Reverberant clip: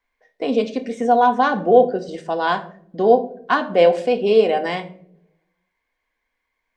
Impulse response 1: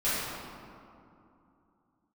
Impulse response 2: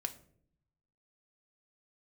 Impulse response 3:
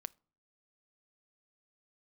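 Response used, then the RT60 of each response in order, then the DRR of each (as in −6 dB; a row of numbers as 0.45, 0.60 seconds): 2; 2.7, 0.60, 0.45 seconds; −13.5, 5.5, 17.5 decibels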